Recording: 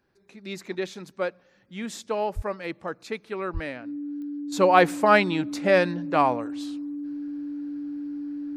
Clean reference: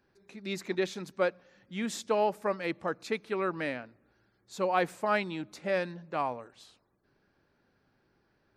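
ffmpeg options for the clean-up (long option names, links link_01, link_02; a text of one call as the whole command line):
ffmpeg -i in.wav -filter_complex "[0:a]adeclick=threshold=4,bandreject=frequency=290:width=30,asplit=3[link_01][link_02][link_03];[link_01]afade=type=out:start_time=2.35:duration=0.02[link_04];[link_02]highpass=frequency=140:width=0.5412,highpass=frequency=140:width=1.3066,afade=type=in:start_time=2.35:duration=0.02,afade=type=out:start_time=2.47:duration=0.02[link_05];[link_03]afade=type=in:start_time=2.47:duration=0.02[link_06];[link_04][link_05][link_06]amix=inputs=3:normalize=0,asplit=3[link_07][link_08][link_09];[link_07]afade=type=out:start_time=3.53:duration=0.02[link_10];[link_08]highpass=frequency=140:width=0.5412,highpass=frequency=140:width=1.3066,afade=type=in:start_time=3.53:duration=0.02,afade=type=out:start_time=3.65:duration=0.02[link_11];[link_09]afade=type=in:start_time=3.65:duration=0.02[link_12];[link_10][link_11][link_12]amix=inputs=3:normalize=0,asetnsamples=nb_out_samples=441:pad=0,asendcmd='4.52 volume volume -10.5dB',volume=0dB" out.wav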